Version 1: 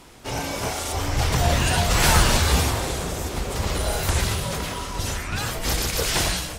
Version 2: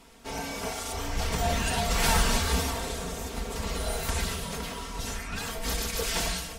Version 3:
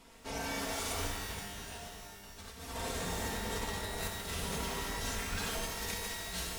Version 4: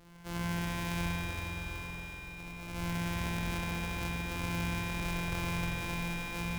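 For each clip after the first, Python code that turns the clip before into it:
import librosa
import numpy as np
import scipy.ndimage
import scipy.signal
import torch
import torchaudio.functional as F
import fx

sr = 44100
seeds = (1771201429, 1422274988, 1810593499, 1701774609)

y1 = x + 0.68 * np.pad(x, (int(4.4 * sr / 1000.0), 0))[:len(x)]
y1 = F.gain(torch.from_numpy(y1), -8.0).numpy()
y2 = fx.over_compress(y1, sr, threshold_db=-33.0, ratio=-0.5)
y2 = fx.rev_shimmer(y2, sr, seeds[0], rt60_s=1.4, semitones=12, shimmer_db=-2, drr_db=2.5)
y2 = F.gain(torch.from_numpy(y2), -8.5).numpy()
y3 = np.r_[np.sort(y2[:len(y2) // 256 * 256].reshape(-1, 256), axis=1).ravel(), y2[len(y2) // 256 * 256:]]
y3 = fx.echo_alternate(y3, sr, ms=198, hz=970.0, feedback_pct=80, wet_db=-11.5)
y3 = fx.rev_spring(y3, sr, rt60_s=3.8, pass_ms=(47,), chirp_ms=75, drr_db=-4.5)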